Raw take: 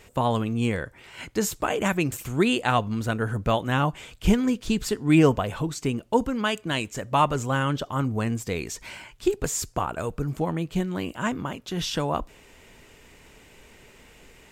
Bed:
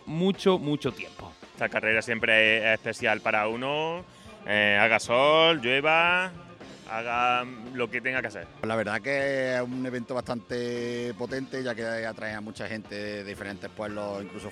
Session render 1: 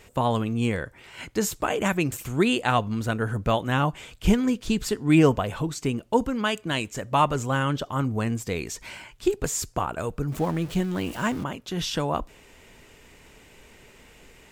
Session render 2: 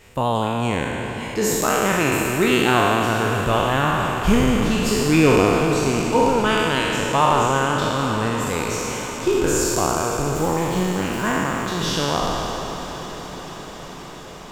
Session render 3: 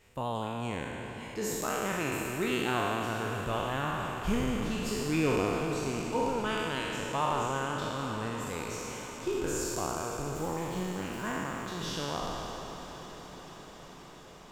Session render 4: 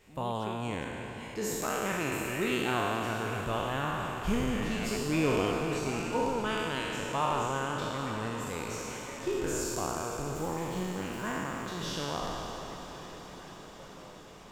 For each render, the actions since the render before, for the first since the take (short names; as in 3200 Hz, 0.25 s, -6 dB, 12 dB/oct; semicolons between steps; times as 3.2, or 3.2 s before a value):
10.32–11.44 zero-crossing step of -35.5 dBFS
spectral trails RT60 2.75 s; diffused feedback echo 0.487 s, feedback 77%, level -12 dB
gain -13 dB
add bed -21 dB